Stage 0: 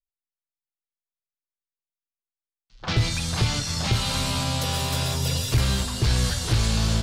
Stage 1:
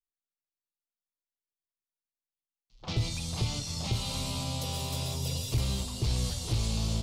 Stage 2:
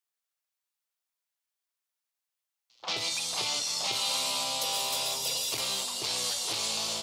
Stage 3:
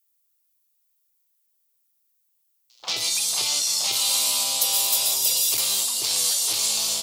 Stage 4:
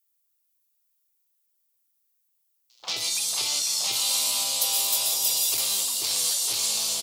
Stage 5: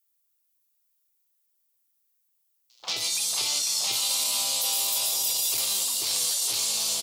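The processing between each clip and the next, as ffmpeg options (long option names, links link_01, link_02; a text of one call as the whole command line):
ffmpeg -i in.wav -af "equalizer=frequency=1600:width_type=o:width=0.66:gain=-14.5,volume=-7.5dB" out.wav
ffmpeg -i in.wav -af "highpass=670,volume=7.5dB" out.wav
ffmpeg -i in.wav -af "aemphasis=mode=production:type=75fm" out.wav
ffmpeg -i in.wav -af "aecho=1:1:492:0.335,volume=-3dB" out.wav
ffmpeg -i in.wav -af "alimiter=limit=-16.5dB:level=0:latency=1:release=15" out.wav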